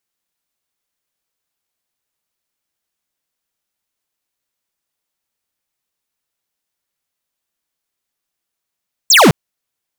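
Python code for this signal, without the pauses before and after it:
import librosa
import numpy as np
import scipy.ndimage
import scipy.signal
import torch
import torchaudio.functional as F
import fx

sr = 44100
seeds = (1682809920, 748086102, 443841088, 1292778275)

y = fx.laser_zap(sr, level_db=-7.0, start_hz=8400.0, end_hz=120.0, length_s=0.21, wave='square')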